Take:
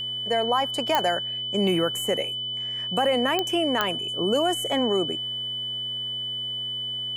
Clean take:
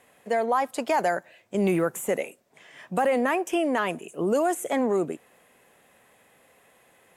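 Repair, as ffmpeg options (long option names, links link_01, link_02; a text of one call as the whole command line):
ffmpeg -i in.wav -af "adeclick=threshold=4,bandreject=frequency=118.7:width_type=h:width=4,bandreject=frequency=237.4:width_type=h:width=4,bandreject=frequency=356.1:width_type=h:width=4,bandreject=frequency=474.8:width_type=h:width=4,bandreject=frequency=593.5:width_type=h:width=4,bandreject=frequency=712.2:width_type=h:width=4,bandreject=frequency=3000:width=30" out.wav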